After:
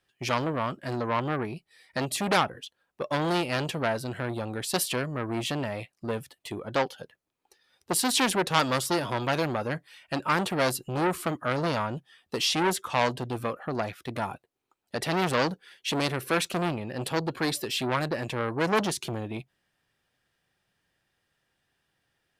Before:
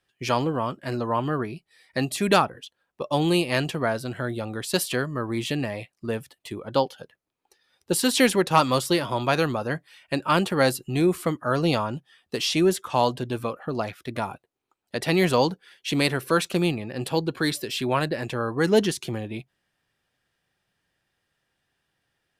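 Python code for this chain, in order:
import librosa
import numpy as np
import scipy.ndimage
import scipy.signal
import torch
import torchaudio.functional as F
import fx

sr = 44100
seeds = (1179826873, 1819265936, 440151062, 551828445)

y = fx.transformer_sat(x, sr, knee_hz=2400.0)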